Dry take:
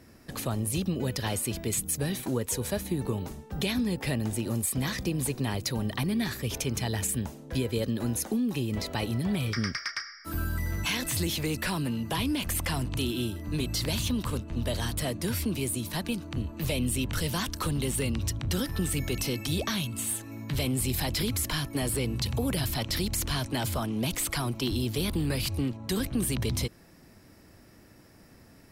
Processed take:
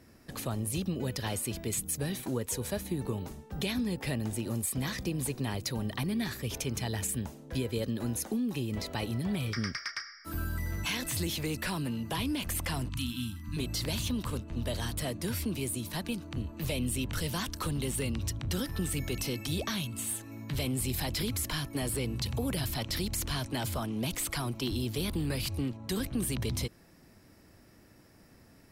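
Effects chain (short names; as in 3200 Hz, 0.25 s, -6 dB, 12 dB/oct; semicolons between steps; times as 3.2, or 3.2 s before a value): 12.89–13.57 elliptic band-stop 270–1000 Hz, stop band 40 dB; gain -3.5 dB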